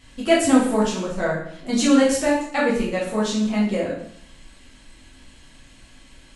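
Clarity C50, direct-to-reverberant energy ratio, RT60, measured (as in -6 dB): 3.0 dB, -7.0 dB, 0.65 s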